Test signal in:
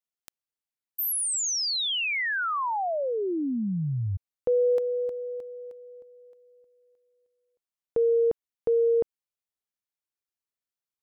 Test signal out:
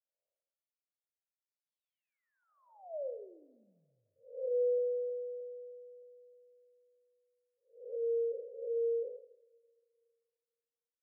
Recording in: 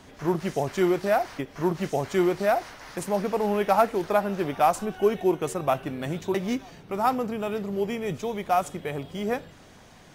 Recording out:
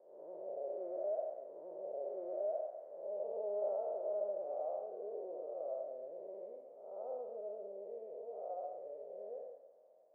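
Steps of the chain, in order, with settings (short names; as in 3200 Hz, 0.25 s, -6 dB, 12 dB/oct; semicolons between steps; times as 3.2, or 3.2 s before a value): time blur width 0.278 s; Butterworth band-pass 560 Hz, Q 3.8; two-slope reverb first 0.79 s, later 2.3 s, from -18 dB, DRR 8.5 dB; gain -3 dB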